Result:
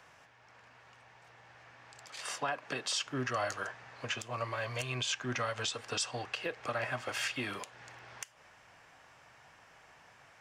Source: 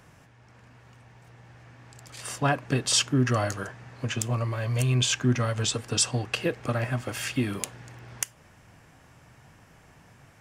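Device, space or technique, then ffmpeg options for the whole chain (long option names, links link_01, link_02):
DJ mixer with the lows and highs turned down: -filter_complex "[0:a]acrossover=split=500 6700:gain=0.158 1 0.251[link_01][link_02][link_03];[link_01][link_02][link_03]amix=inputs=3:normalize=0,alimiter=limit=-23.5dB:level=0:latency=1:release=187,asettb=1/sr,asplit=3[link_04][link_05][link_06];[link_04]atrim=end=2.064[link_07];[link_05]atrim=start=2.06:end=3.07,asetpts=PTS-STARTPTS,afade=type=in:duration=0.004:curve=qsin,afade=type=out:start_time=1.006:duration=0.004:curve=qsin,highpass=frequency=140:width=0.5412,highpass=frequency=140:width=1.3066[link_08];[link_06]atrim=start=3.066[link_09];[link_07][link_08]acrossfade=duration=0.004:curve1=hsin:curve2=qsin[link_10];[link_10][link_09]acrossfade=duration=0.004:curve1=qsin:curve2=hsin"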